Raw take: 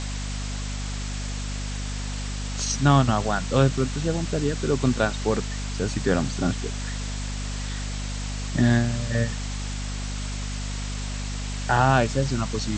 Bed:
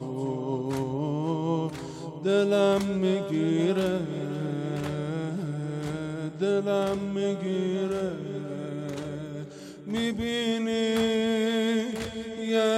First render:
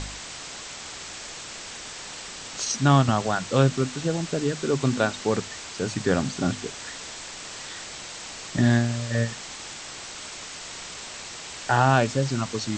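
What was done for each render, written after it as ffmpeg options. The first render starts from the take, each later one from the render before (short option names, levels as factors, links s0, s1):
-af "bandreject=f=50:t=h:w=4,bandreject=f=100:t=h:w=4,bandreject=f=150:t=h:w=4,bandreject=f=200:t=h:w=4,bandreject=f=250:t=h:w=4"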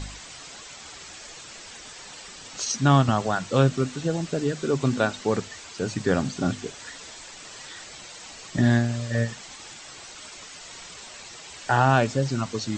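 -af "afftdn=nr=8:nf=-39"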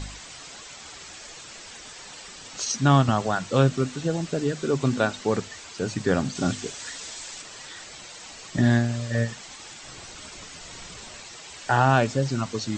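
-filter_complex "[0:a]asettb=1/sr,asplit=3[s0][s1][s2];[s0]atrim=end=6.354[s3];[s1]atrim=start=6.35:end=7.42,asetpts=PTS-STARTPTS,afade=t=in:d=0.004:c=qsin,afade=t=out:st=1.066:d=0.004:c=qsin,highshelf=f=3300:g=7[s4];[s2]atrim=start=7.416[s5];[s3][s4]acrossfade=d=0.004:c1=hsin:c2=qsin[s6];[s6][s5]acrossfade=d=0.004:c1=qsin:c2=hsin,asettb=1/sr,asplit=3[s7][s8][s9];[s7]atrim=end=9.834[s10];[s8]atrim=start=9.83:end=11.2,asetpts=PTS-STARTPTS,afade=t=in:d=0.004:c=qsin,afade=t=out:st=1.366:d=0.004:c=qsin,lowshelf=f=280:g=10[s11];[s9]atrim=start=11.196[s12];[s10][s11]acrossfade=d=0.004:c1=hsin:c2=qsin[s13];[s13][s12]acrossfade=d=0.004:c1=qsin:c2=hsin"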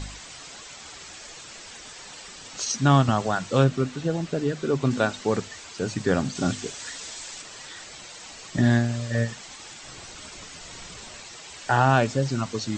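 -filter_complex "[0:a]asettb=1/sr,asplit=3[s0][s1][s2];[s0]atrim=end=3.644[s3];[s1]atrim=start=3.64:end=4.91,asetpts=PTS-STARTPTS,afade=t=in:d=0.004:c=qsin,afade=t=out:st=1.266:d=0.004:c=qsin,highshelf=f=7500:g=-11.5[s4];[s2]atrim=start=4.906[s5];[s3][s4]acrossfade=d=0.004:c1=hsin:c2=qsin[s6];[s6][s5]acrossfade=d=0.004:c1=qsin:c2=hsin"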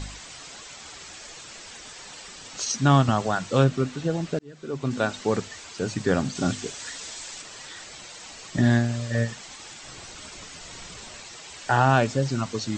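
-filter_complex "[0:a]asplit=2[s0][s1];[s0]atrim=end=4.39,asetpts=PTS-STARTPTS,afade=t=out:st=4.386:d=0.004:c=hsin[s2];[s1]atrim=start=4.39,asetpts=PTS-STARTPTS,afade=t=in:d=0.78[s3];[s2][s3]concat=n=2:v=0:a=1"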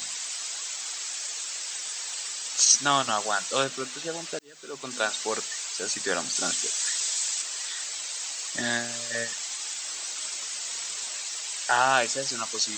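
-af "highpass=f=500:p=1,aemphasis=mode=production:type=riaa"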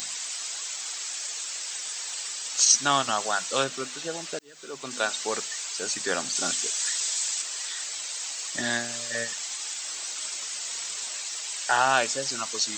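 -af "acompressor=mode=upward:threshold=0.01:ratio=2.5"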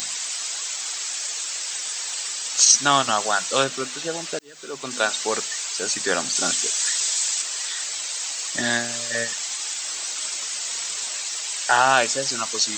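-af "volume=1.78,alimiter=limit=0.708:level=0:latency=1"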